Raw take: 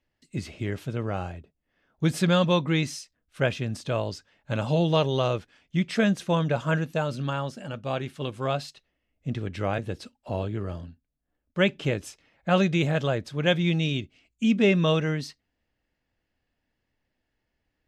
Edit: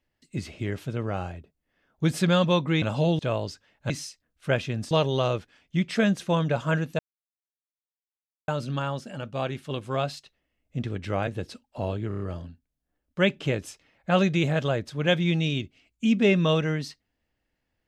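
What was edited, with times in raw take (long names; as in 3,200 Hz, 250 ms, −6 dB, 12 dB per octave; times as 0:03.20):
0:02.82–0:03.83: swap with 0:04.54–0:04.91
0:06.99: splice in silence 1.49 s
0:10.59: stutter 0.03 s, 5 plays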